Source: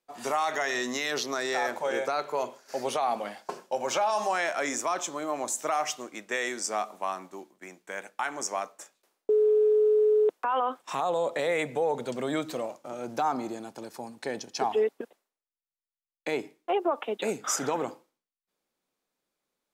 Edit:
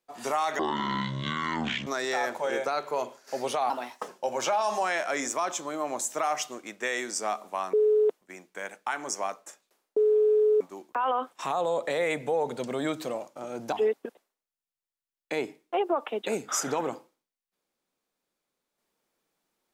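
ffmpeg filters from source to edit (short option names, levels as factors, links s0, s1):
-filter_complex "[0:a]asplit=10[s0][s1][s2][s3][s4][s5][s6][s7][s8][s9];[s0]atrim=end=0.594[s10];[s1]atrim=start=0.59:end=1.28,asetpts=PTS-STARTPTS,asetrate=23814,aresample=44100[s11];[s2]atrim=start=1.276:end=3.114[s12];[s3]atrim=start=3.11:end=3.57,asetpts=PTS-STARTPTS,asetrate=52479,aresample=44100,atrim=end_sample=17047,asetpts=PTS-STARTPTS[s13];[s4]atrim=start=3.566:end=7.222[s14];[s5]atrim=start=9.928:end=10.412[s15];[s6]atrim=start=7.538:end=9.932[s16];[s7]atrim=start=7.218:end=7.542[s17];[s8]atrim=start=10.408:end=13.212[s18];[s9]atrim=start=14.678[s19];[s10][s11]acrossfade=d=0.004:c1=hsin:c2=hsin[s20];[s20][s12]acrossfade=d=0.004:c1=hsin:c2=hsin[s21];[s21][s13]acrossfade=d=0.004:c1=hsin:c2=hsin[s22];[s22][s14]acrossfade=d=0.004:c1=hsin:c2=hsin[s23];[s23][s15]acrossfade=d=0.004:c1=hsin:c2=hsin[s24];[s24][s16]acrossfade=d=0.004:c1=hsin:c2=hsin[s25];[s25][s17]acrossfade=d=0.004:c1=hsin:c2=hsin[s26];[s26][s18]acrossfade=d=0.004:c1=hsin:c2=hsin[s27];[s27][s19]acrossfade=d=0.004:c1=hsin:c2=hsin"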